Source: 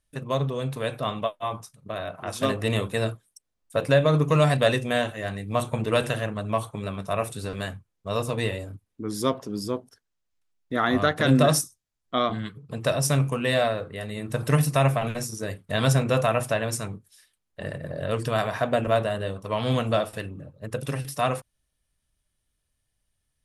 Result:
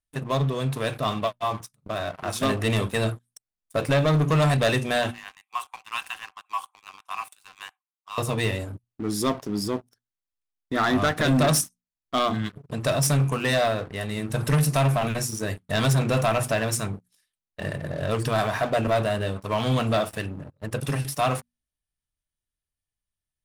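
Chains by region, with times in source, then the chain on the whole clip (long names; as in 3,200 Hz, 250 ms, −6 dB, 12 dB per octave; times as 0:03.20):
0:05.11–0:08.18: Chebyshev high-pass with heavy ripple 740 Hz, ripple 9 dB + parametric band 4,200 Hz −9.5 dB 0.83 octaves
whole clip: parametric band 510 Hz −5.5 dB 0.36 octaves; mains-hum notches 60/120/180/240 Hz; leveller curve on the samples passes 3; level −7 dB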